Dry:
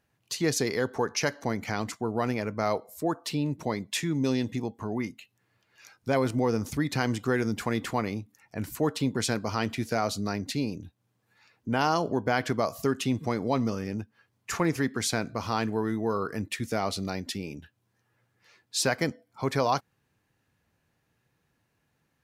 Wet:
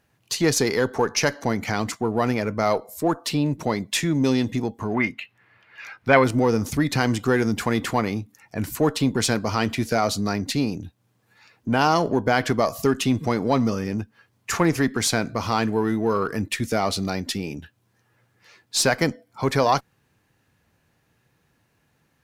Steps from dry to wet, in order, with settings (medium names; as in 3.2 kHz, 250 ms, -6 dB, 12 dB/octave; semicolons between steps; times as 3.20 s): in parallel at -8 dB: one-sided clip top -35 dBFS; 4.94–6.24 s: on the sum: FFT filter 340 Hz 0 dB, 2.1 kHz +11 dB, 6.5 kHz -9 dB; trim +4.5 dB